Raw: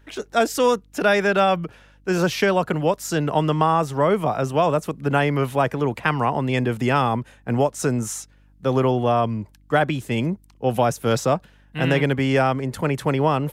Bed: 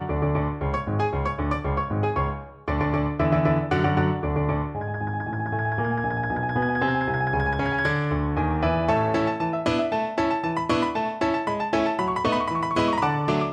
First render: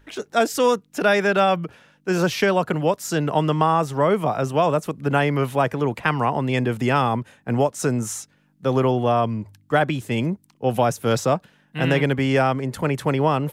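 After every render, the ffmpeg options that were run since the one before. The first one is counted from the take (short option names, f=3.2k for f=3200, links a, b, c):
-af "bandreject=f=50:t=h:w=4,bandreject=f=100:t=h:w=4"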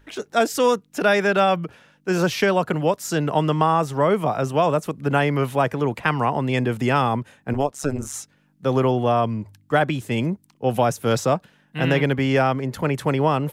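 -filter_complex "[0:a]asettb=1/sr,asplit=3[a][b][c];[a]atrim=end=7.534[d];[b]atrim=start=7.53:end=8.14,asetpts=PTS-STARTPTS,afade=t=in:d=0.004:c=qsin,afade=t=out:st=0.606:d=0.004:c=qsin,tremolo=f=140:d=0.974[e];[c]atrim=start=8.136[f];[d][e]acrossfade=d=0.004:c1=hsin:c2=qsin[g];[g][f]acrossfade=d=0.004:c1=qsin:c2=hsin,asettb=1/sr,asplit=3[h][i][j];[h]atrim=end=11.804[k];[i]atrim=start=11.8:end=12.94,asetpts=PTS-STARTPTS,afade=t=in:d=0.004:c=qsin,afade=t=out:st=1.136:d=0.004:c=qsin,equalizer=f=8.5k:w=3.2:g=-6.5[l];[j]atrim=start=12.936[m];[k][l]acrossfade=d=0.004:c1=hsin:c2=qsin[n];[n][m]acrossfade=d=0.004:c1=qsin:c2=hsin"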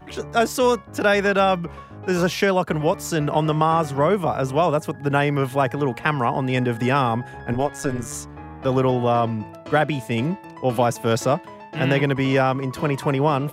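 -filter_complex "[1:a]volume=-14dB[a];[0:a][a]amix=inputs=2:normalize=0"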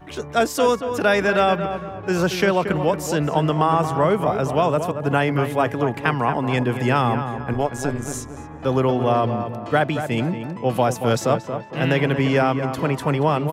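-filter_complex "[0:a]asplit=2[a][b];[b]adelay=229,lowpass=f=2k:p=1,volume=-8dB,asplit=2[c][d];[d]adelay=229,lowpass=f=2k:p=1,volume=0.43,asplit=2[e][f];[f]adelay=229,lowpass=f=2k:p=1,volume=0.43,asplit=2[g][h];[h]adelay=229,lowpass=f=2k:p=1,volume=0.43,asplit=2[i][j];[j]adelay=229,lowpass=f=2k:p=1,volume=0.43[k];[a][c][e][g][i][k]amix=inputs=6:normalize=0"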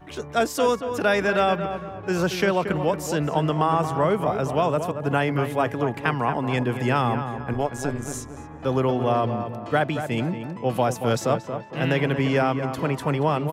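-af "volume=-3dB"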